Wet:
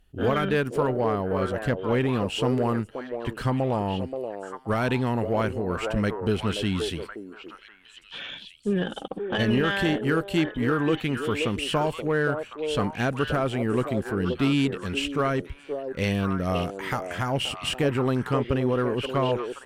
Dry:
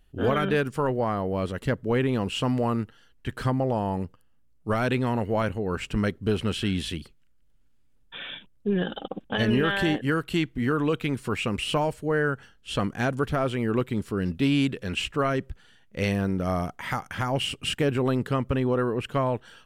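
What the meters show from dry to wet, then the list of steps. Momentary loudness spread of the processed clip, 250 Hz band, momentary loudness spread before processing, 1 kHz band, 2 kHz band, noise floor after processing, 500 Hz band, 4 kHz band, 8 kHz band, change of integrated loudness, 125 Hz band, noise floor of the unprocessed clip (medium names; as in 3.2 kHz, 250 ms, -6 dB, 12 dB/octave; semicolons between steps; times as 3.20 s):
9 LU, +0.5 dB, 8 LU, +1.0 dB, +0.5 dB, -50 dBFS, +1.5 dB, +0.5 dB, +0.5 dB, +0.5 dB, 0.0 dB, -59 dBFS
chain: repeats whose band climbs or falls 527 ms, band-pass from 460 Hz, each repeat 1.4 oct, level -3 dB; Chebyshev shaper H 8 -33 dB, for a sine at -11.5 dBFS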